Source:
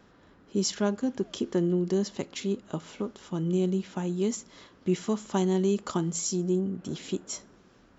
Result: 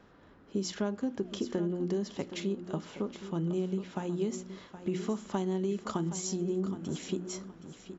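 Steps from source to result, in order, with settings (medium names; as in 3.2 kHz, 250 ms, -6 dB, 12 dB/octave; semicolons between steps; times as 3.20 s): treble shelf 4.7 kHz -9 dB; hum notches 60/120/180/240/300/360 Hz; compression, threshold -28 dBFS, peak gain reduction 7 dB; feedback delay 770 ms, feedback 28%, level -12 dB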